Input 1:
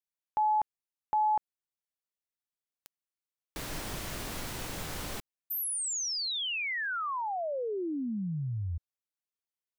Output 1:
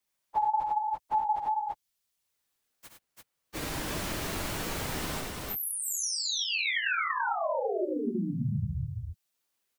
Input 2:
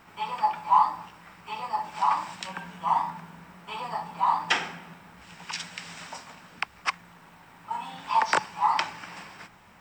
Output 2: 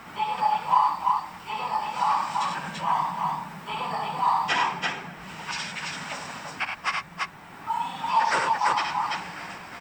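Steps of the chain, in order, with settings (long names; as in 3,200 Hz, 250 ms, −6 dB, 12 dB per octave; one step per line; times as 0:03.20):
random phases in long frames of 50 ms
multi-tap delay 56/69/96/337 ms −11/−8/−6.5/−3.5 dB
multiband upward and downward compressor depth 40%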